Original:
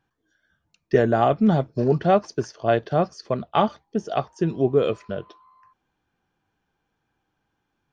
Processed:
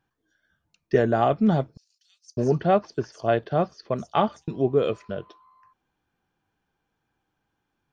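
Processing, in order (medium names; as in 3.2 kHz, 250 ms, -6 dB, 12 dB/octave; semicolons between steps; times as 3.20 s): 1.77–4.48 s: bands offset in time highs, lows 600 ms, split 5.4 kHz; trim -2 dB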